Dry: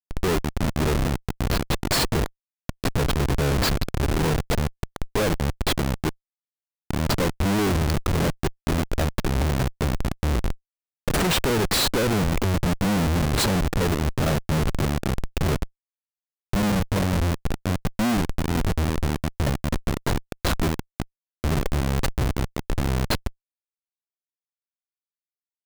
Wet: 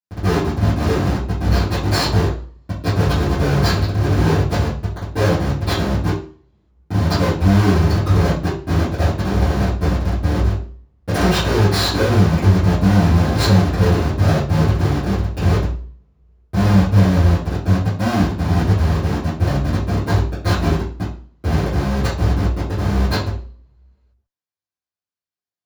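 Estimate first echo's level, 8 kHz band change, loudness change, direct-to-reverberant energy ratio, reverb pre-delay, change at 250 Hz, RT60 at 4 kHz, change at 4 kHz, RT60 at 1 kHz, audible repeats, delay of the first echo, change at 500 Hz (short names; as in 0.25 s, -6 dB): none, -2.0 dB, +7.0 dB, -16.0 dB, 3 ms, +6.5 dB, 0.40 s, +2.5 dB, 0.40 s, none, none, +5.5 dB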